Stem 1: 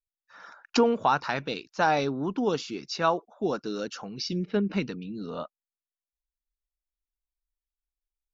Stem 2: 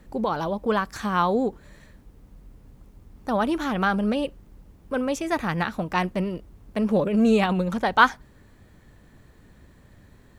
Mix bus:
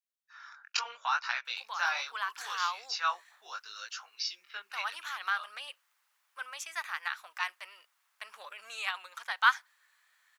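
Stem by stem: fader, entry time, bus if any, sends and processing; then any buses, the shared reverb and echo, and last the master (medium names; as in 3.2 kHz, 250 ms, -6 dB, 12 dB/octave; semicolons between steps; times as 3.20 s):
+2.5 dB, 0.00 s, no send, chorus 0.75 Hz, delay 16.5 ms, depth 6.7 ms
-4.5 dB, 1.45 s, no send, none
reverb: none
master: high-pass 1.2 kHz 24 dB/octave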